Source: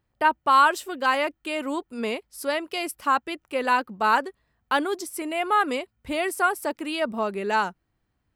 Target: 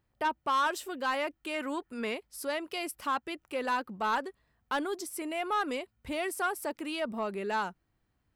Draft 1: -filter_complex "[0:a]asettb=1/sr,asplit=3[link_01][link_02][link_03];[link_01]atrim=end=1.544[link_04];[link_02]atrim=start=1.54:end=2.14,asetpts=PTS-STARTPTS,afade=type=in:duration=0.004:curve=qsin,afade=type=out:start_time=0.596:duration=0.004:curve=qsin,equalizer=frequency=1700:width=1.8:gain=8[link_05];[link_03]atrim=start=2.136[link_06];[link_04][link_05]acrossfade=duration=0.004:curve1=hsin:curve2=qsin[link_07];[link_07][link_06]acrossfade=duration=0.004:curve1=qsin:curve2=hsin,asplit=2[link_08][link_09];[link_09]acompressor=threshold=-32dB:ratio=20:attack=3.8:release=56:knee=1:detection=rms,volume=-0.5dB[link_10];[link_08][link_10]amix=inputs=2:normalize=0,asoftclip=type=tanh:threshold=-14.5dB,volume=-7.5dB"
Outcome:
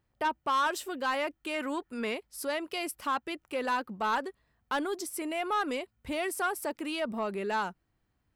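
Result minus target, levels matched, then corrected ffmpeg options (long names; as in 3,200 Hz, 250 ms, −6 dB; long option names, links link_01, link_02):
downward compressor: peak gain reduction −6 dB
-filter_complex "[0:a]asettb=1/sr,asplit=3[link_01][link_02][link_03];[link_01]atrim=end=1.544[link_04];[link_02]atrim=start=1.54:end=2.14,asetpts=PTS-STARTPTS,afade=type=in:duration=0.004:curve=qsin,afade=type=out:start_time=0.596:duration=0.004:curve=qsin,equalizer=frequency=1700:width=1.8:gain=8[link_05];[link_03]atrim=start=2.136[link_06];[link_04][link_05]acrossfade=duration=0.004:curve1=hsin:curve2=qsin[link_07];[link_07][link_06]acrossfade=duration=0.004:curve1=qsin:curve2=hsin,asplit=2[link_08][link_09];[link_09]acompressor=threshold=-38.5dB:ratio=20:attack=3.8:release=56:knee=1:detection=rms,volume=-0.5dB[link_10];[link_08][link_10]amix=inputs=2:normalize=0,asoftclip=type=tanh:threshold=-14.5dB,volume=-7.5dB"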